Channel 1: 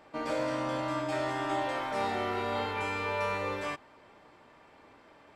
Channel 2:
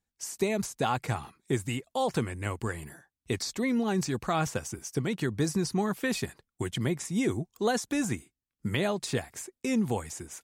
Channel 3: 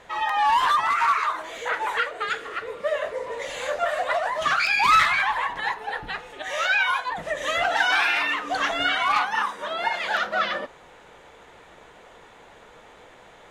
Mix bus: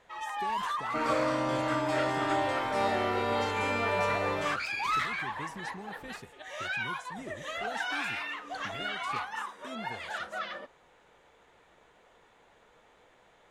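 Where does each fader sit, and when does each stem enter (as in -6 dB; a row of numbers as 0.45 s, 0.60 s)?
+2.5 dB, -16.5 dB, -12.5 dB; 0.80 s, 0.00 s, 0.00 s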